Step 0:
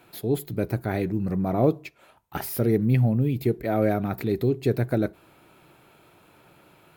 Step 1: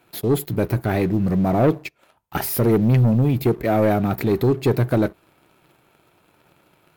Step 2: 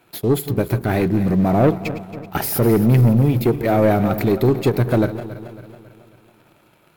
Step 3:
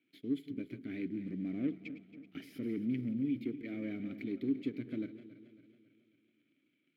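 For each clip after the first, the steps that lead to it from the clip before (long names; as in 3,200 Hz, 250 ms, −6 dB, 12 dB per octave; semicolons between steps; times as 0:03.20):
leveller curve on the samples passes 2
feedback delay that plays each chunk backwards 137 ms, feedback 69%, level −13 dB; every ending faded ahead of time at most 280 dB per second; level +2 dB
formant filter i; level −9 dB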